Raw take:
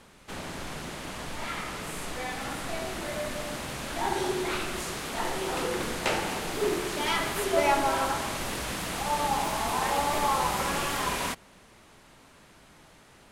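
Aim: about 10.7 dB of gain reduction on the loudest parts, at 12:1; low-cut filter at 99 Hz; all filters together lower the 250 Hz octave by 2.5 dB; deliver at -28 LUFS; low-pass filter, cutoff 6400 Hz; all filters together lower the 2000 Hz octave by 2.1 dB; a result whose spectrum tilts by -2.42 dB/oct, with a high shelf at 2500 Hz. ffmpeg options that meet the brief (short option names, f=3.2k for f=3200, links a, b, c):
-af "highpass=99,lowpass=6.4k,equalizer=f=250:t=o:g=-3.5,equalizer=f=2k:t=o:g=-5.5,highshelf=f=2.5k:g=6,acompressor=threshold=-30dB:ratio=12,volume=6.5dB"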